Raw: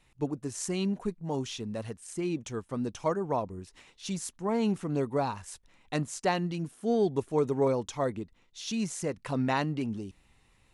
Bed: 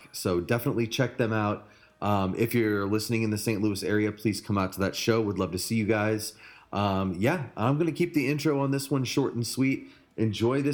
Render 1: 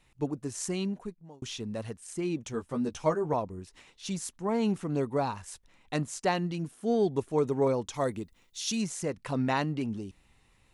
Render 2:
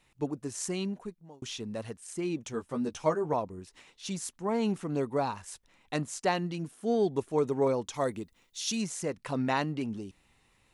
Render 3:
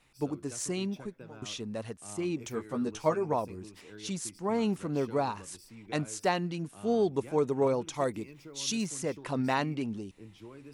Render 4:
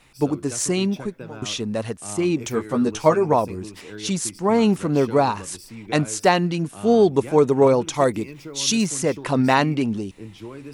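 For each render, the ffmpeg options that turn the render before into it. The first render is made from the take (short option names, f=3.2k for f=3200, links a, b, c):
-filter_complex "[0:a]asettb=1/sr,asplit=3[a][b][c];[a]atrim=end=2.524[d];[b]atrim=start=2.52:end=3.34,asetpts=PTS-STARTPTS,afade=t=in:d=0.004:c=qsin,afade=t=out:st=0.816:d=0.004:c=qsin,asplit=2[e][f];[f]adelay=13,volume=-4.5dB[g];[e][g]amix=inputs=2:normalize=0,atrim=end_sample=36162[h];[c]atrim=start=3.336[i];[d][h]acrossfade=d=0.004:c1=hsin:c2=qsin[j];[j][i]acrossfade=d=0.004:c1=qsin:c2=hsin,asettb=1/sr,asplit=3[k][l][m];[k]atrim=end=7.944[n];[l]atrim=start=7.94:end=8.82,asetpts=PTS-STARTPTS,afade=t=in:d=0.004:c=qsin,afade=t=out:st=0.876:d=0.004:c=qsin,aemphasis=mode=production:type=50kf[o];[m]atrim=start=8.816[p];[n][o]acrossfade=d=0.004:c1=hsin:c2=qsin[q];[q][p]acrossfade=d=0.004:c1=qsin:c2=hsin,asplit=2[r][s];[r]atrim=end=1.42,asetpts=PTS-STARTPTS,afade=t=out:st=0.69:d=0.73[t];[s]atrim=start=1.42,asetpts=PTS-STARTPTS,afade=t=in:d=0.004:c=hsin[u];[t][u]concat=n=2:v=0:a=1"
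-af "lowshelf=f=120:g=-7"
-filter_complex "[1:a]volume=-23.5dB[a];[0:a][a]amix=inputs=2:normalize=0"
-af "volume=11.5dB,alimiter=limit=-3dB:level=0:latency=1"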